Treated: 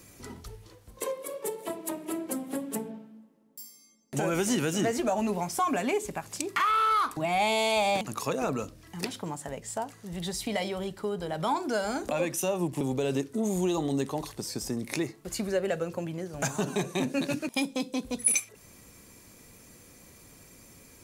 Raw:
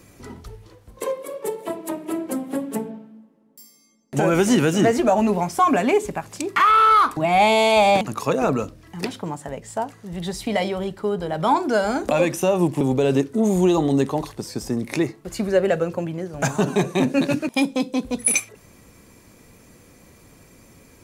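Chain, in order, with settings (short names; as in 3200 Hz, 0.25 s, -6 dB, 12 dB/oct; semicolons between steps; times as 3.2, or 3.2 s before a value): high shelf 3300 Hz +8 dB; compressor 1.5:1, threshold -27 dBFS, peak gain reduction 7 dB; 12.08–12.73 three-band expander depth 70%; gain -5.5 dB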